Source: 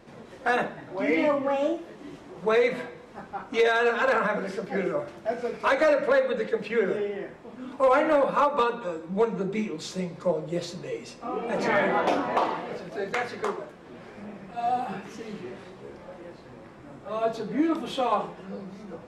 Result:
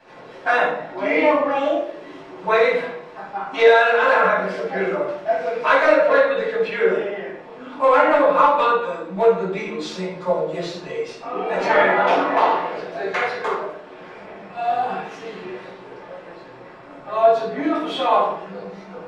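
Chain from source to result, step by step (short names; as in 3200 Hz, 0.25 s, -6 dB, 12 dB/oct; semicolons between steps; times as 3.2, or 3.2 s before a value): three-band isolator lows -16 dB, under 390 Hz, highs -12 dB, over 5100 Hz; reverb RT60 0.55 s, pre-delay 5 ms, DRR -7.5 dB; gain -1.5 dB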